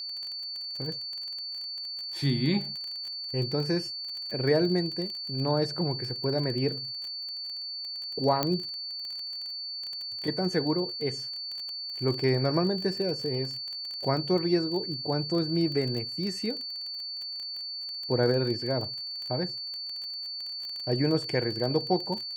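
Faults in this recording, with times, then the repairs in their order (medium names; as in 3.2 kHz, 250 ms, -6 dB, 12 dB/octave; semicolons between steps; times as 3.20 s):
crackle 24 per s -33 dBFS
whine 4.5 kHz -34 dBFS
8.43 s: pop -10 dBFS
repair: de-click; band-stop 4.5 kHz, Q 30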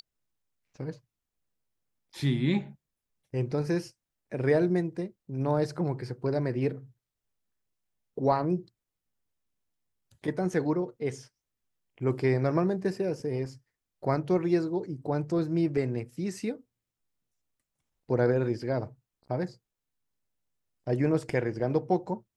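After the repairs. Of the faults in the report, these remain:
nothing left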